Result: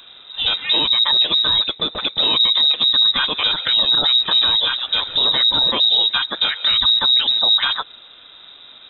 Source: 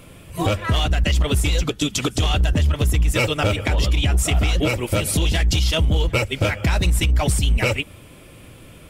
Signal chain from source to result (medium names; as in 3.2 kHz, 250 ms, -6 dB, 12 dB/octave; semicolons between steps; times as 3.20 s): frequency inversion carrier 3.8 kHz